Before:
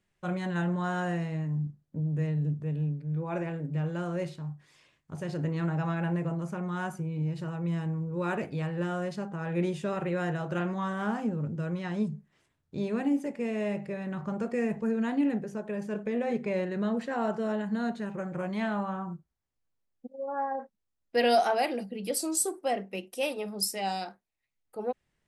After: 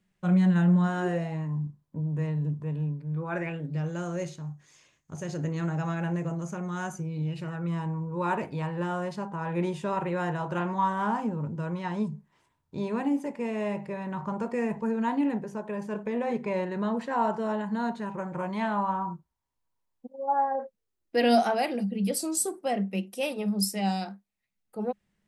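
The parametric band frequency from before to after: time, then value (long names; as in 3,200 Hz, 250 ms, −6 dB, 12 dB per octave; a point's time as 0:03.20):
parametric band +14.5 dB 0.29 octaves
0:00.85 190 Hz
0:01.38 1,000 Hz
0:03.15 1,000 Hz
0:03.88 6,500 Hz
0:06.99 6,500 Hz
0:07.80 960 Hz
0:20.19 960 Hz
0:21.52 200 Hz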